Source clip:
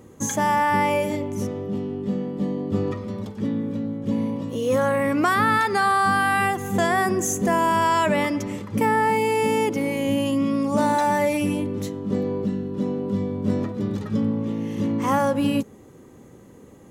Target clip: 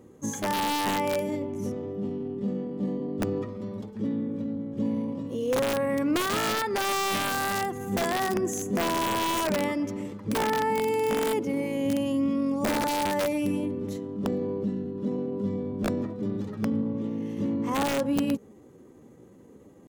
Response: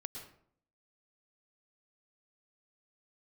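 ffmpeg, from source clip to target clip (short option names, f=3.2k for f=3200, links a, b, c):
-af "aeval=exprs='(mod(4.47*val(0)+1,2)-1)/4.47':c=same,equalizer=f=340:t=o:w=2.3:g=6,atempo=0.85,volume=-9dB"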